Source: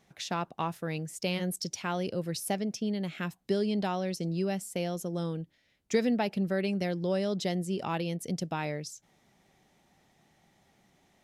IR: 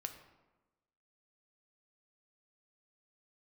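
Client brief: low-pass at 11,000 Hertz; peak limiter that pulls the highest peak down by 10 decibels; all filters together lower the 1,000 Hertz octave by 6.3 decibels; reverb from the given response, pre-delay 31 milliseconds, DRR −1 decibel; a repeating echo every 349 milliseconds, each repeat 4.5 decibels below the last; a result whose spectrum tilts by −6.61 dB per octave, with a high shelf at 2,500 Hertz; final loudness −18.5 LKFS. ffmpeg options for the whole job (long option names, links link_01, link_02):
-filter_complex "[0:a]lowpass=11000,equalizer=frequency=1000:width_type=o:gain=-7.5,highshelf=frequency=2500:gain=-8,alimiter=level_in=2dB:limit=-24dB:level=0:latency=1,volume=-2dB,aecho=1:1:349|698|1047|1396|1745|2094|2443|2792|3141:0.596|0.357|0.214|0.129|0.0772|0.0463|0.0278|0.0167|0.01,asplit=2[link_01][link_02];[1:a]atrim=start_sample=2205,adelay=31[link_03];[link_02][link_03]afir=irnorm=-1:irlink=0,volume=3.5dB[link_04];[link_01][link_04]amix=inputs=2:normalize=0,volume=12.5dB"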